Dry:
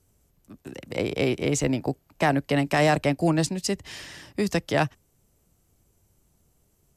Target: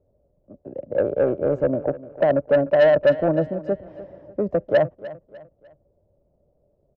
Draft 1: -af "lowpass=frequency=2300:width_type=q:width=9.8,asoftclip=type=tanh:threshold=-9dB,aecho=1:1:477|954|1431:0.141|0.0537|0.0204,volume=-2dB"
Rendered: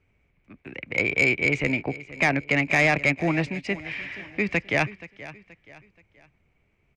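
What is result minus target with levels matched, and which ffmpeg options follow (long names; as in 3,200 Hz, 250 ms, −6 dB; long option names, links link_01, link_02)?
2,000 Hz band +13.0 dB; echo 177 ms late
-af "lowpass=frequency=580:width_type=q:width=9.8,asoftclip=type=tanh:threshold=-9dB,aecho=1:1:300|600|900:0.141|0.0537|0.0204,volume=-2dB"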